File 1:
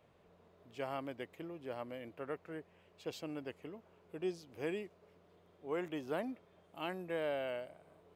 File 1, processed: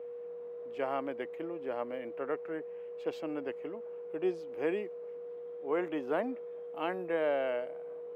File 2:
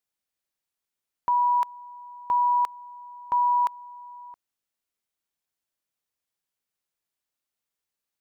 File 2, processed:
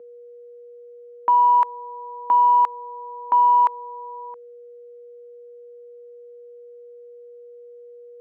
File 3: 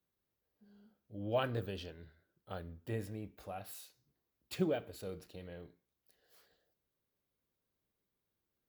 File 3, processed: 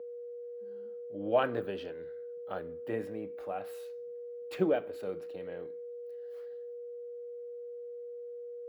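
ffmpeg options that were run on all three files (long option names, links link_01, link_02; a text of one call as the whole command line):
ffmpeg -i in.wav -filter_complex "[0:a]aeval=exprs='val(0)+0.00447*sin(2*PI*480*n/s)':channel_layout=same,acontrast=78,acrossover=split=210 2500:gain=0.126 1 0.178[link_01][link_02][link_03];[link_01][link_02][link_03]amix=inputs=3:normalize=0" out.wav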